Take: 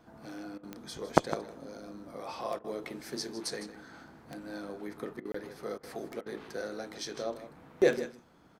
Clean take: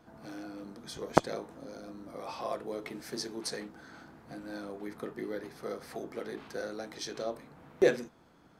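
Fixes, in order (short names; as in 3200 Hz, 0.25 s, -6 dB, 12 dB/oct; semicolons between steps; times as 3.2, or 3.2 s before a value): de-click; interpolate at 5.32, 24 ms; interpolate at 0.58/2.59/5.2/5.78/6.21, 51 ms; inverse comb 0.156 s -13 dB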